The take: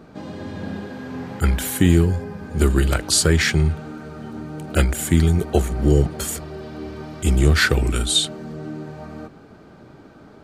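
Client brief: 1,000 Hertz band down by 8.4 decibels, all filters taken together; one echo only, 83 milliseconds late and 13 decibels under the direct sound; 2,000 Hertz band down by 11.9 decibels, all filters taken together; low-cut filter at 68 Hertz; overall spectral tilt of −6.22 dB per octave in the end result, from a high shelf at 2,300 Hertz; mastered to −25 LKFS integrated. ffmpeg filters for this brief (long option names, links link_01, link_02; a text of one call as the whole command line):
ffmpeg -i in.wav -af "highpass=68,equalizer=frequency=1000:width_type=o:gain=-7.5,equalizer=frequency=2000:width_type=o:gain=-9,highshelf=frequency=2300:gain=-8,aecho=1:1:83:0.224,volume=-2.5dB" out.wav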